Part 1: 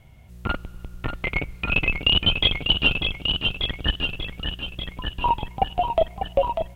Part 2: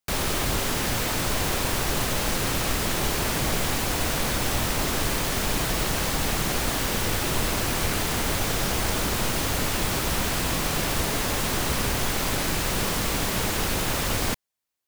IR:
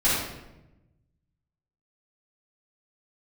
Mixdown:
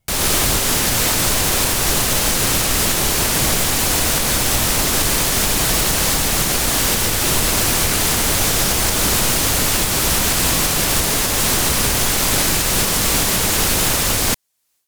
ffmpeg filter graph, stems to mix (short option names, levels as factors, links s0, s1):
-filter_complex "[0:a]volume=0.141[s0];[1:a]equalizer=f=10000:w=0.35:g=8,dynaudnorm=f=180:g=3:m=3.76,volume=1.26[s1];[s0][s1]amix=inputs=2:normalize=0,alimiter=limit=0.501:level=0:latency=1:release=434"